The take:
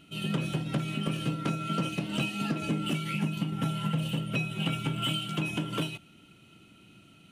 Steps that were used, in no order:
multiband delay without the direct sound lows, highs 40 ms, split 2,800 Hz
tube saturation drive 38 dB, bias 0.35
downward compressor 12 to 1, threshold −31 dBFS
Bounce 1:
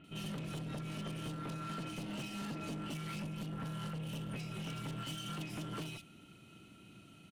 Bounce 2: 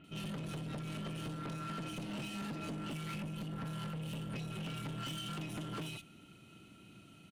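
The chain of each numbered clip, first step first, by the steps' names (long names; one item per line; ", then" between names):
downward compressor, then tube saturation, then multiband delay without the direct sound
multiband delay without the direct sound, then downward compressor, then tube saturation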